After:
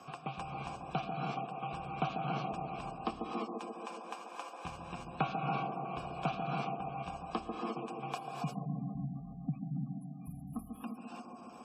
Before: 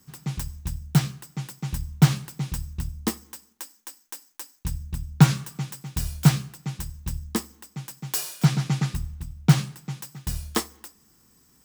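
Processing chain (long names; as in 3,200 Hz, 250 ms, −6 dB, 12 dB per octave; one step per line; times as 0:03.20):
0:05.63–0:06.13: parametric band 5,500 Hz −5.5 dB 2.1 octaves
0:08.18–0:10.84: gain on a spectral selection 280–9,800 Hz −26 dB
formant filter a
delay with a band-pass on its return 139 ms, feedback 62%, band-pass 410 Hz, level −3 dB
reverb whose tail is shaped and stops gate 370 ms rising, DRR 0.5 dB
dynamic equaliser 250 Hz, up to +5 dB, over −58 dBFS, Q 1.6
gate on every frequency bin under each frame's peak −30 dB strong
multiband upward and downward compressor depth 70%
level +7 dB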